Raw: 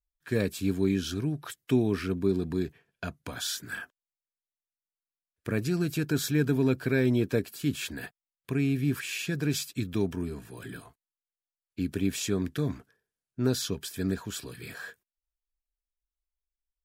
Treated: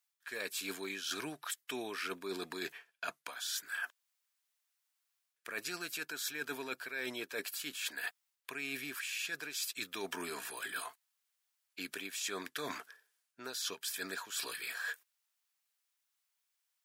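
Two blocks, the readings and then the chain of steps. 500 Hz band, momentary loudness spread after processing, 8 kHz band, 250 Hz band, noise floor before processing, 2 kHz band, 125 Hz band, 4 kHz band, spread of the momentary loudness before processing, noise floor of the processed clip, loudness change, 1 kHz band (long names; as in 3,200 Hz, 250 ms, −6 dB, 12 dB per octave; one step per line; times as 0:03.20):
−13.5 dB, 6 LU, −2.5 dB, −19.5 dB, below −85 dBFS, −1.0 dB, −30.5 dB, −2.0 dB, 16 LU, −84 dBFS, −10.0 dB, 0.0 dB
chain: high-pass filter 1,000 Hz 12 dB per octave
reversed playback
downward compressor 10 to 1, threshold −50 dBFS, peak gain reduction 20.5 dB
reversed playback
level +13 dB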